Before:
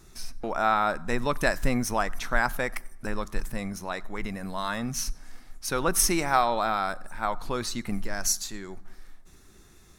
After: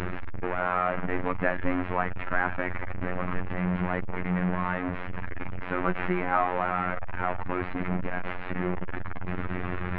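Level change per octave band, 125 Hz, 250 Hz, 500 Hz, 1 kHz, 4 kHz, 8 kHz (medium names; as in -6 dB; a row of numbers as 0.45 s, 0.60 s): +4.5 dB, +2.0 dB, -0.5 dB, -1.5 dB, -14.0 dB, under -40 dB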